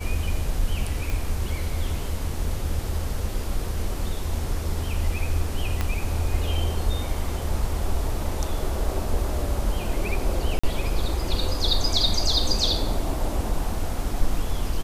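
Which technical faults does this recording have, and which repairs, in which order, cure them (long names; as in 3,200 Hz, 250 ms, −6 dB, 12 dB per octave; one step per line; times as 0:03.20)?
0:01.10: click
0:05.81: click −11 dBFS
0:10.59–0:10.63: drop-out 45 ms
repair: click removal
repair the gap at 0:10.59, 45 ms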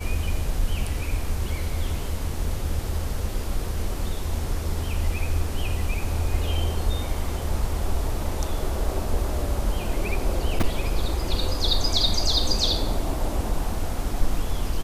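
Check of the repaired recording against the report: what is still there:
0:05.81: click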